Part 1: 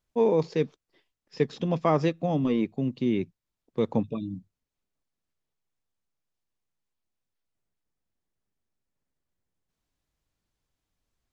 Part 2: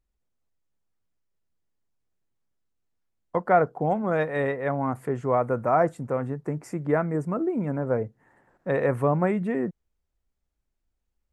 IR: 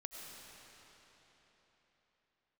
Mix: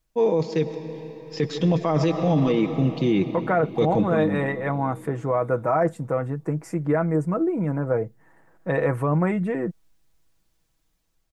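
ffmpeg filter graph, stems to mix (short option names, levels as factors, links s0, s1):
-filter_complex "[0:a]highshelf=f=7300:g=6.5,dynaudnorm=f=280:g=5:m=2,volume=0.841,asplit=2[s0][s1];[s1]volume=0.668[s2];[1:a]volume=1.19[s3];[2:a]atrim=start_sample=2205[s4];[s2][s4]afir=irnorm=-1:irlink=0[s5];[s0][s3][s5]amix=inputs=3:normalize=0,aecho=1:1:6.2:0.51,alimiter=limit=0.237:level=0:latency=1:release=12"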